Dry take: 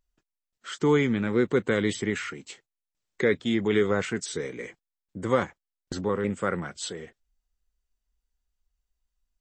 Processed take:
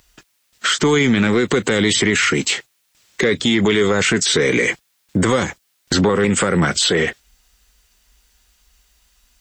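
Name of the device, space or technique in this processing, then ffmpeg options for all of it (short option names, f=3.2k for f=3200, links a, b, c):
mastering chain: -filter_complex "[0:a]highpass=43,equalizer=f=2.5k:t=o:w=2.4:g=3,acrossover=split=540|4100[a][b][c];[a]acompressor=threshold=-29dB:ratio=4[d];[b]acompressor=threshold=-39dB:ratio=4[e];[c]acompressor=threshold=-46dB:ratio=4[f];[d][e][f]amix=inputs=3:normalize=0,acompressor=threshold=-33dB:ratio=2,asoftclip=type=tanh:threshold=-25dB,tiltshelf=f=1.3k:g=-3.5,alimiter=level_in=34dB:limit=-1dB:release=50:level=0:latency=1,volume=-7dB"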